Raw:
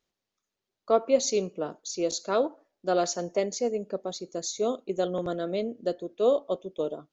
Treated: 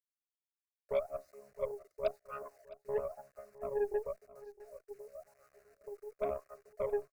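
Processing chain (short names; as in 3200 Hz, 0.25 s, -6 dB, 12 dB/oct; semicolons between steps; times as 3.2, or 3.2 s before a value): chord vocoder bare fifth, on C#3; bell 1000 Hz -5 dB 0.4 oct; transient shaper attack +1 dB, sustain +6 dB; 4.51–6.18 compressor 6:1, threshold -43 dBFS, peak gain reduction 20.5 dB; wah 0.96 Hz 390–1200 Hz, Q 18; loudest bins only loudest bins 64; requantised 12-bit, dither none; fixed phaser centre 900 Hz, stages 6; added harmonics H 8 -23 dB, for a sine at -28 dBFS; echo 0.66 s -18 dB; gain +8 dB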